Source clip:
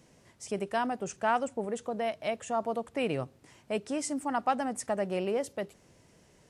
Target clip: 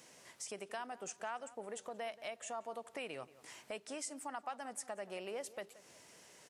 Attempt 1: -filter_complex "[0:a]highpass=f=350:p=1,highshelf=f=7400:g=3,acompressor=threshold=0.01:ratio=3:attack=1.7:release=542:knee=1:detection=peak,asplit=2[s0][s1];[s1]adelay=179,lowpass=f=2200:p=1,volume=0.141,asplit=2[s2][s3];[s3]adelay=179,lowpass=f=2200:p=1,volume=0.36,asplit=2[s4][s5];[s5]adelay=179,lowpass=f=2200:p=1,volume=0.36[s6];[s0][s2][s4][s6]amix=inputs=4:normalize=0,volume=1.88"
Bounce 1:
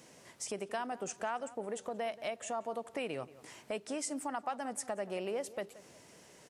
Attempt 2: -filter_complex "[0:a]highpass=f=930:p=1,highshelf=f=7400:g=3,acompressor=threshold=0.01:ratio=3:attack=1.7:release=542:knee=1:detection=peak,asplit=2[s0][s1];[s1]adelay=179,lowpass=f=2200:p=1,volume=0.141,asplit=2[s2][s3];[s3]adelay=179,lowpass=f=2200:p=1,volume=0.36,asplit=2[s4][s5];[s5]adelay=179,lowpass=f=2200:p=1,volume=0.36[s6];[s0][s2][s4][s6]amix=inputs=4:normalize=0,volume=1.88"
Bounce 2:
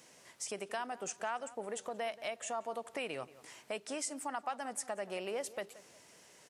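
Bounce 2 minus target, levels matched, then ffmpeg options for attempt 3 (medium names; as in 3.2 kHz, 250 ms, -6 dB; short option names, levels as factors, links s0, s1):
compression: peak gain reduction -4.5 dB
-filter_complex "[0:a]highpass=f=930:p=1,highshelf=f=7400:g=3,acompressor=threshold=0.00447:ratio=3:attack=1.7:release=542:knee=1:detection=peak,asplit=2[s0][s1];[s1]adelay=179,lowpass=f=2200:p=1,volume=0.141,asplit=2[s2][s3];[s3]adelay=179,lowpass=f=2200:p=1,volume=0.36,asplit=2[s4][s5];[s5]adelay=179,lowpass=f=2200:p=1,volume=0.36[s6];[s0][s2][s4][s6]amix=inputs=4:normalize=0,volume=1.88"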